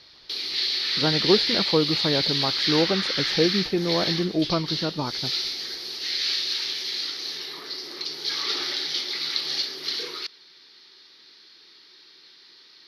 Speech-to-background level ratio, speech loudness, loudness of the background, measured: −1.0 dB, −26.0 LKFS, −25.0 LKFS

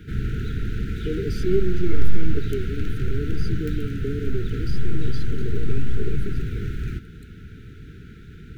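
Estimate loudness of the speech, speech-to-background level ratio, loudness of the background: −31.5 LKFS, −2.0 dB, −29.5 LKFS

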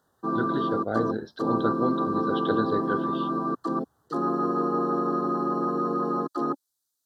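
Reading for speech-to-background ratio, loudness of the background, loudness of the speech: −4.0 dB, −27.5 LKFS, −31.5 LKFS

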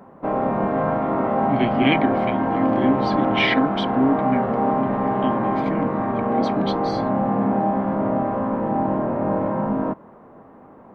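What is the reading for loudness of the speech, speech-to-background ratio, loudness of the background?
−25.0 LKFS, −3.0 dB, −22.0 LKFS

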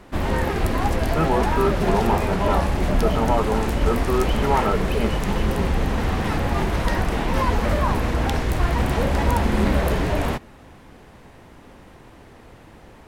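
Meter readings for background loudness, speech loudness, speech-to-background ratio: −23.0 LKFS, −25.5 LKFS, −2.5 dB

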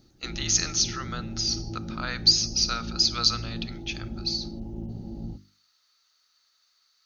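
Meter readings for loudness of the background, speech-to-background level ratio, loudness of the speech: −37.5 LKFS, 12.5 dB, −25.0 LKFS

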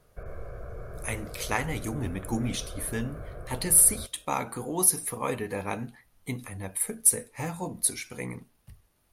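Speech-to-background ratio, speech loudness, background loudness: 16.5 dB, −26.5 LKFS, −43.0 LKFS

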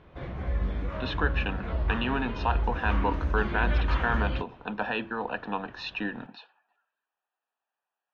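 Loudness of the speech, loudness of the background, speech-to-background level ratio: −31.5 LKFS, −31.5 LKFS, 0.0 dB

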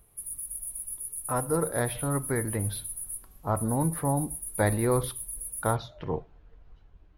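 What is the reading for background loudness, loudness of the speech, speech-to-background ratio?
−35.0 LKFS, −30.0 LKFS, 5.0 dB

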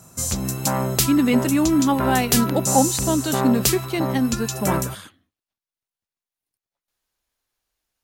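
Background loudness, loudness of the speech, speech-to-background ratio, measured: −23.0 LKFS, −22.0 LKFS, 1.0 dB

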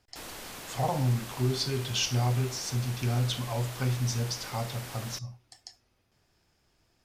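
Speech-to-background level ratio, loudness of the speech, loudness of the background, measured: 11.0 dB, −30.5 LKFS, −41.5 LKFS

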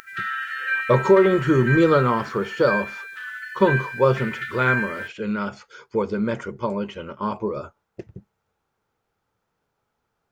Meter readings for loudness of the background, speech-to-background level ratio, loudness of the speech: −28.0 LKFS, 6.0 dB, −22.0 LKFS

